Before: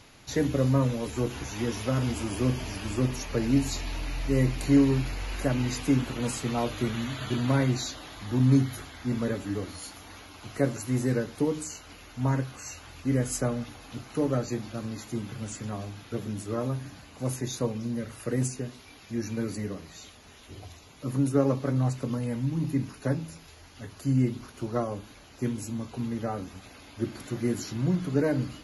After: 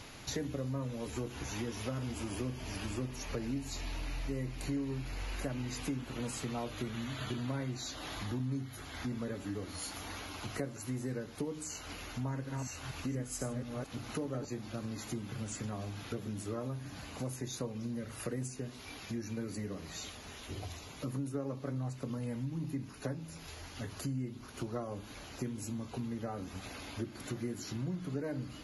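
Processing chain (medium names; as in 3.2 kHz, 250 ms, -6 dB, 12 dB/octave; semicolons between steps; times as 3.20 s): 12.20–14.45 s: chunks repeated in reverse 238 ms, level -6 dB; compression 4:1, threshold -41 dBFS, peak gain reduction 20.5 dB; trim +3.5 dB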